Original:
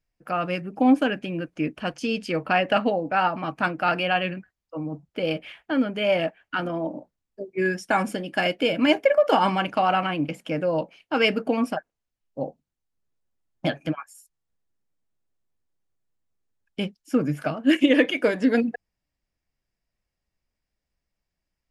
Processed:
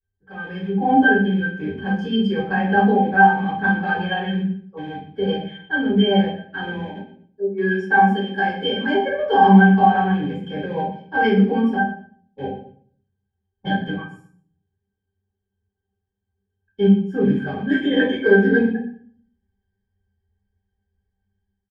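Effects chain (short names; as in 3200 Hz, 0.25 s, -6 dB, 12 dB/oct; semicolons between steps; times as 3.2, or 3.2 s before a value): rattling part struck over -37 dBFS, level -28 dBFS; 6.77–8.94 low shelf 250 Hz -8 dB; octave resonator G, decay 0.14 s; AGC gain up to 8 dB; high shelf 5500 Hz +7.5 dB; feedback echo 0.12 s, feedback 18%, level -16 dB; shoebox room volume 48 m³, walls mixed, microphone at 3.3 m; gain -5 dB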